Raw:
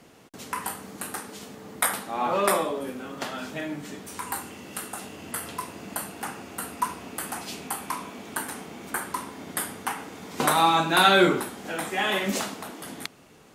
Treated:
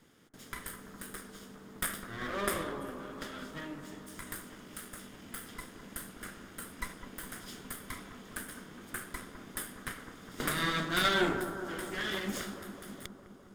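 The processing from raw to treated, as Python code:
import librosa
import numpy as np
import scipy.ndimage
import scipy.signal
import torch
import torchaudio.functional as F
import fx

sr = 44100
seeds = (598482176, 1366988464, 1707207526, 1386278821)

y = fx.lower_of_two(x, sr, delay_ms=0.6)
y = fx.echo_bbd(y, sr, ms=205, stages=2048, feedback_pct=72, wet_db=-9.5)
y = F.gain(torch.from_numpy(y), -9.0).numpy()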